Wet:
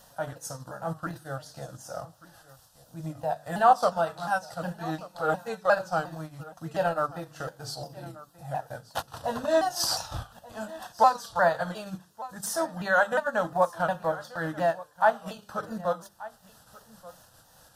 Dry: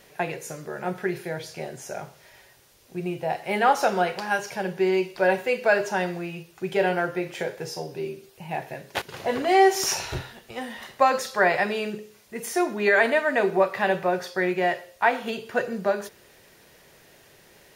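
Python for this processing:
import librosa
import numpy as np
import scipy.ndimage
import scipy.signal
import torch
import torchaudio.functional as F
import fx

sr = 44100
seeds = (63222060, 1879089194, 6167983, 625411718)

y = fx.pitch_ramps(x, sr, semitones=-3.5, every_ms=356)
y = fx.hum_notches(y, sr, base_hz=50, count=7)
y = fx.transient(y, sr, attack_db=-2, sustain_db=-8)
y = fx.fixed_phaser(y, sr, hz=920.0, stages=4)
y = y + 10.0 ** (-19.0 / 20.0) * np.pad(y, (int(1182 * sr / 1000.0), 0))[:len(y)]
y = y * librosa.db_to_amplitude(3.0)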